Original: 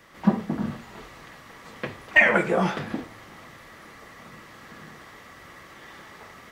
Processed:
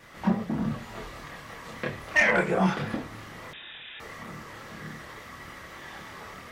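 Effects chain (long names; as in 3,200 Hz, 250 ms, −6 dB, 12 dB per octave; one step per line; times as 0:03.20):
in parallel at −0.5 dB: downward compressor, threshold −33 dBFS, peak gain reduction 20 dB
on the sum: soft clipping −9.5 dBFS, distortion −16 dB
multi-voice chorus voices 4, 0.9 Hz, delay 27 ms, depth 1.1 ms
pitch vibrato 3.5 Hz 24 cents
0:03.53–0:04.00: voice inversion scrambler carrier 3,700 Hz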